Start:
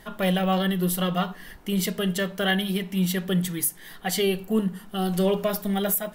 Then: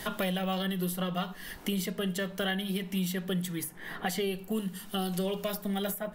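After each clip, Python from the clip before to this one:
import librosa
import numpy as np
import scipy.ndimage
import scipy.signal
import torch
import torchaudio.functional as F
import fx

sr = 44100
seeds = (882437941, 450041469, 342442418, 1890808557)

y = fx.band_squash(x, sr, depth_pct=100)
y = F.gain(torch.from_numpy(y), -8.0).numpy()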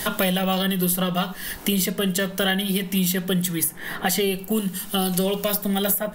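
y = fx.high_shelf(x, sr, hz=5700.0, db=8.0)
y = F.gain(torch.from_numpy(y), 8.5).numpy()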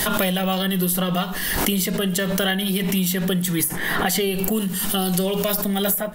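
y = fx.pre_swell(x, sr, db_per_s=24.0)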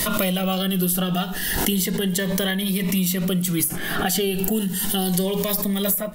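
y = fx.notch_cascade(x, sr, direction='rising', hz=0.33)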